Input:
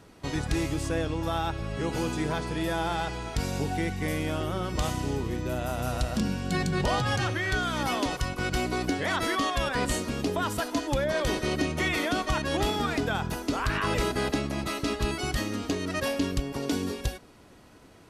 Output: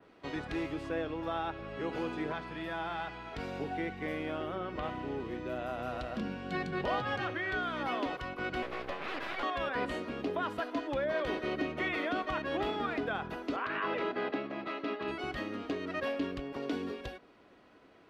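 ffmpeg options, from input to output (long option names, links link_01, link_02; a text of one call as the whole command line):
ffmpeg -i in.wav -filter_complex "[0:a]asettb=1/sr,asplit=3[link_01][link_02][link_03];[link_01]atrim=end=2.324[link_04];[link_02]atrim=start=2.32:end=3.32,asetpts=PTS-STARTPTS,afade=type=in:duration=0.004:curve=qsin,afade=type=out:start_time=0.996:duration=0.004:curve=qsin,equalizer=frequency=440:width_type=o:width=0.94:gain=-9[link_05];[link_03]atrim=start=3.316[link_06];[link_04][link_05]acrossfade=duration=0.004:curve1=hsin:curve2=qsin[link_07];[link_07][link_06]acrossfade=duration=0.004:curve1=qsin:curve2=hsin,asettb=1/sr,asplit=3[link_08][link_09][link_10];[link_08]atrim=end=4.554[link_11];[link_09]atrim=start=4.55:end=5.2,asetpts=PTS-STARTPTS,afade=type=in:duration=0.004:curve=qsin,afade=type=out:start_time=0.646:duration=0.004:curve=qsin,acrossover=split=3400[link_12][link_13];[link_13]acompressor=threshold=-51dB:ratio=4:attack=1:release=60[link_14];[link_12][link_14]amix=inputs=2:normalize=0[link_15];[link_10]atrim=start=5.196[link_16];[link_11][link_15]acrossfade=duration=0.004:curve1=hsin:curve2=qsin[link_17];[link_17][link_16]acrossfade=duration=0.004:curve1=qsin:curve2=hsin,asettb=1/sr,asplit=3[link_18][link_19][link_20];[link_18]atrim=end=8.624[link_21];[link_19]atrim=start=8.62:end=9.43,asetpts=PTS-STARTPTS,afade=type=in:duration=0.004:curve=qsin,afade=type=out:start_time=0.806:duration=0.004:curve=qsin,aeval=exprs='abs(val(0))':channel_layout=same[link_22];[link_20]atrim=start=9.426[link_23];[link_21][link_22]acrossfade=duration=0.004:curve1=hsin:curve2=qsin[link_24];[link_24][link_23]acrossfade=duration=0.004:curve1=qsin:curve2=hsin,asettb=1/sr,asplit=3[link_25][link_26][link_27];[link_25]atrim=end=13.564[link_28];[link_26]atrim=start=13.56:end=15.08,asetpts=PTS-STARTPTS,afade=type=in:duration=0.004:curve=qsin,afade=type=out:start_time=1.516:duration=0.004:curve=qsin,highpass=190,lowpass=4000[link_29];[link_27]atrim=start=15.076[link_30];[link_28][link_29]acrossfade=duration=0.004:curve1=hsin:curve2=qsin[link_31];[link_31][link_30]acrossfade=duration=0.004:curve1=qsin:curve2=hsin,acrossover=split=230 3900:gain=0.224 1 0.0891[link_32][link_33][link_34];[link_32][link_33][link_34]amix=inputs=3:normalize=0,bandreject=frequency=890:width=12,adynamicequalizer=threshold=0.00224:dfrequency=6500:dqfactor=0.73:tfrequency=6500:tqfactor=0.73:attack=5:release=100:ratio=0.375:range=3:mode=cutabove:tftype=bell,volume=-4dB" out.wav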